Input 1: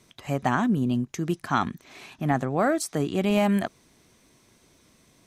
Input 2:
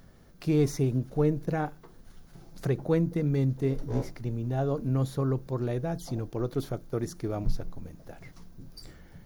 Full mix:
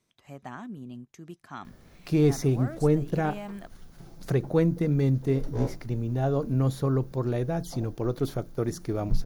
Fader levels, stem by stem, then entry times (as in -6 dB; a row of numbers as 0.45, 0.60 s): -16.5, +2.5 dB; 0.00, 1.65 s